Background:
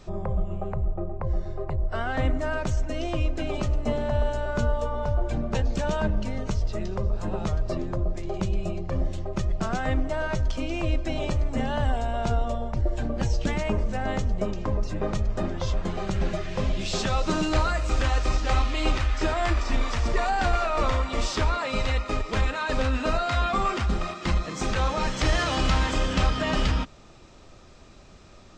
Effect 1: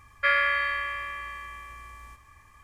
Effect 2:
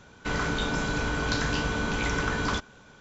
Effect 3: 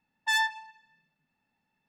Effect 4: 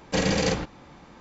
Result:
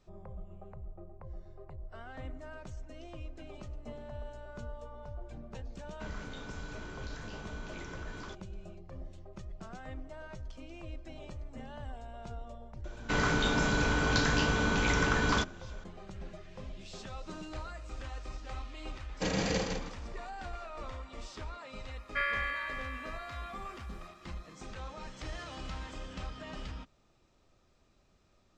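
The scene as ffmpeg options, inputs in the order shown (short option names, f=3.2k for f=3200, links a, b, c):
-filter_complex "[2:a]asplit=2[a][b];[0:a]volume=-18.5dB[c];[a]alimiter=limit=-18dB:level=0:latency=1:release=71[d];[4:a]aecho=1:1:159|318|477:0.596|0.131|0.0288[e];[d]atrim=end=3,asetpts=PTS-STARTPTS,volume=-17dB,afade=t=in:d=0.004:c=hsin,afade=t=out:st=2.996:d=0.004:c=hsin,adelay=5750[f];[b]atrim=end=3,asetpts=PTS-STARTPTS,volume=-0.5dB,afade=t=in:d=0.004:c=hsin,afade=t=out:st=2.996:d=0.004:c=hsin,adelay=566244S[g];[e]atrim=end=1.2,asetpts=PTS-STARTPTS,volume=-9dB,afade=t=in:d=0.004:c=hsin,afade=t=out:st=1.196:d=0.004:c=hsin,adelay=841428S[h];[1:a]atrim=end=2.63,asetpts=PTS-STARTPTS,volume=-9.5dB,afade=t=in:d=0.004:c=hsin,afade=t=out:st=2.626:d=0.004:c=hsin,adelay=21920[i];[c][f][g][h][i]amix=inputs=5:normalize=0"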